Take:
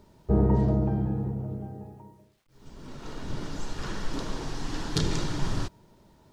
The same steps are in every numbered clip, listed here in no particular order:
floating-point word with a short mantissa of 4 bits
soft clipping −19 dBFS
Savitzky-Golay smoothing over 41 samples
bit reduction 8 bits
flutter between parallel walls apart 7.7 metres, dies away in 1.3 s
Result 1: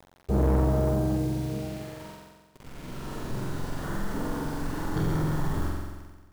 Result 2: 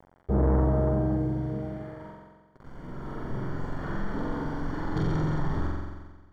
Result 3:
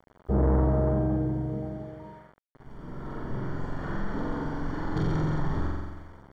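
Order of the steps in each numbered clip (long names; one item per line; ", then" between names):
Savitzky-Golay smoothing, then bit reduction, then flutter between parallel walls, then soft clipping, then floating-point word with a short mantissa
bit reduction, then flutter between parallel walls, then soft clipping, then floating-point word with a short mantissa, then Savitzky-Golay smoothing
flutter between parallel walls, then floating-point word with a short mantissa, then soft clipping, then bit reduction, then Savitzky-Golay smoothing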